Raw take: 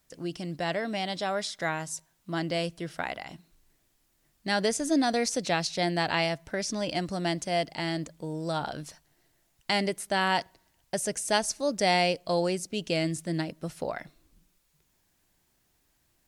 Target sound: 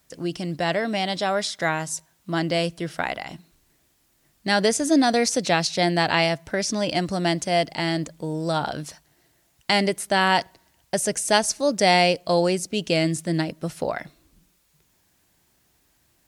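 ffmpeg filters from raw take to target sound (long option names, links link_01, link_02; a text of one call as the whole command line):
ffmpeg -i in.wav -af "highpass=43,volume=6.5dB" out.wav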